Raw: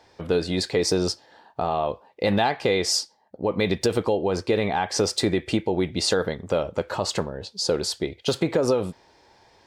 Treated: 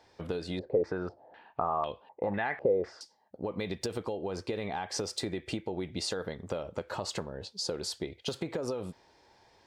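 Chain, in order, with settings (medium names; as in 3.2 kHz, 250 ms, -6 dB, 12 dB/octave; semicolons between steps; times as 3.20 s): compression, threshold -25 dBFS, peak gain reduction 8.5 dB; 0.59–3.01 s: step-sequenced low-pass 4 Hz 540–3200 Hz; trim -6 dB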